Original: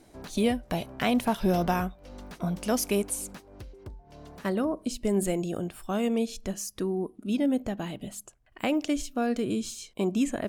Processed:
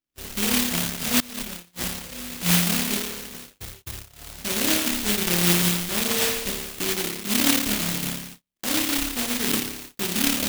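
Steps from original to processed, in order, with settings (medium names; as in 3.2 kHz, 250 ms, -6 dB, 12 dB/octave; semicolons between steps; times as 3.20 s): peaking EQ 4.7 kHz -10 dB 1.5 oct; peak limiter -22.5 dBFS, peak gain reduction 9.5 dB; bass shelf 100 Hz +2.5 dB; flutter echo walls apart 4.9 m, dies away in 1 s; 1.20–1.86 s: compressor with a negative ratio -34 dBFS, ratio -0.5; gate -41 dBFS, range -40 dB; careless resampling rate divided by 3×, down filtered, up zero stuff; delay time shaken by noise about 2.8 kHz, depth 0.35 ms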